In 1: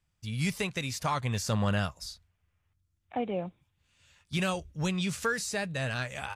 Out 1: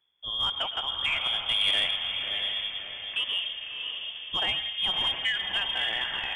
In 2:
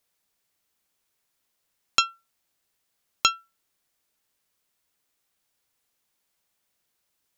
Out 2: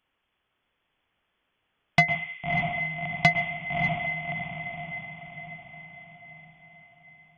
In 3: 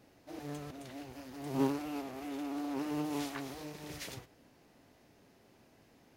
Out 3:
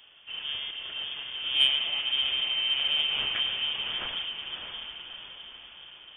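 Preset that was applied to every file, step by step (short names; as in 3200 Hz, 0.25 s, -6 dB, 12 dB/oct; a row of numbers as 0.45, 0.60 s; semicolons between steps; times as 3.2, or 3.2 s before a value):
diffused feedback echo 0.617 s, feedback 51%, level -5 dB; plate-style reverb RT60 1.3 s, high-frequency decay 0.3×, pre-delay 95 ms, DRR 9 dB; inverted band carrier 3400 Hz; soft clip -16.5 dBFS; match loudness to -27 LUFS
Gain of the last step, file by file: +1.5, +6.0, +7.5 dB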